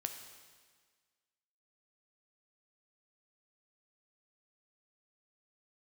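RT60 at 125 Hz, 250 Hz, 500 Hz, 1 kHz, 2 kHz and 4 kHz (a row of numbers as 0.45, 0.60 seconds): 1.5, 1.6, 1.6, 1.6, 1.6, 1.6 seconds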